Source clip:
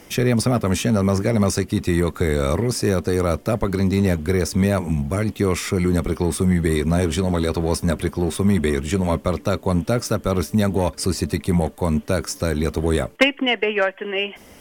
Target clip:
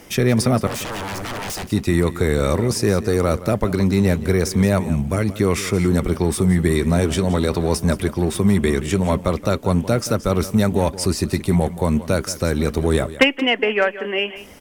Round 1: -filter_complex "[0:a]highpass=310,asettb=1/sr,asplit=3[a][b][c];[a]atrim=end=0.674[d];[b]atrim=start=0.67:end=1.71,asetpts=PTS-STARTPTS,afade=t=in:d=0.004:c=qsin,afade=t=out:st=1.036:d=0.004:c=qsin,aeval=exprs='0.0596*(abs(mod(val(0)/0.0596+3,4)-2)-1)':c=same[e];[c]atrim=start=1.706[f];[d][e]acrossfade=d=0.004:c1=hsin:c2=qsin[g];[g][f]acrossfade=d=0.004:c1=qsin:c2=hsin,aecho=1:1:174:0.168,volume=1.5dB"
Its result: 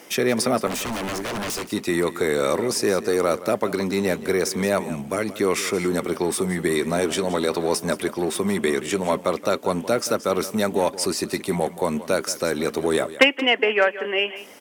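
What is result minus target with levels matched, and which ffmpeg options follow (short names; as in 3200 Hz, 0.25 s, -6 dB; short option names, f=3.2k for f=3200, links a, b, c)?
250 Hz band -2.5 dB
-filter_complex "[0:a]asettb=1/sr,asplit=3[a][b][c];[a]atrim=end=0.674[d];[b]atrim=start=0.67:end=1.71,asetpts=PTS-STARTPTS,afade=t=in:d=0.004:c=qsin,afade=t=out:st=1.036:d=0.004:c=qsin,aeval=exprs='0.0596*(abs(mod(val(0)/0.0596+3,4)-2)-1)':c=same[e];[c]atrim=start=1.706[f];[d][e]acrossfade=d=0.004:c1=hsin:c2=qsin[g];[g][f]acrossfade=d=0.004:c1=qsin:c2=hsin,aecho=1:1:174:0.168,volume=1.5dB"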